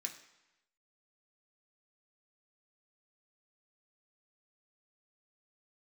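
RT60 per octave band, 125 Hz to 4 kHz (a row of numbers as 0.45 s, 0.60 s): 0.95 s, 0.90 s, 0.90 s, 1.0 s, 1.0 s, 0.95 s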